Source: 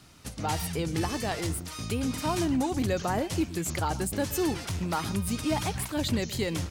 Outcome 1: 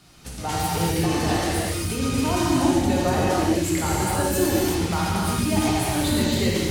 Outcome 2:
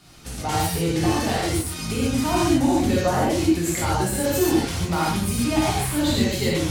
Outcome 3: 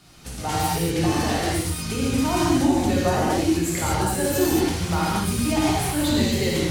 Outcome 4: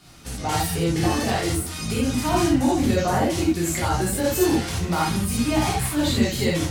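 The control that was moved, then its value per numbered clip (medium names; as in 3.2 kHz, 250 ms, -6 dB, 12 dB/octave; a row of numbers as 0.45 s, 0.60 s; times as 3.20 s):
gated-style reverb, gate: 410 ms, 170 ms, 260 ms, 110 ms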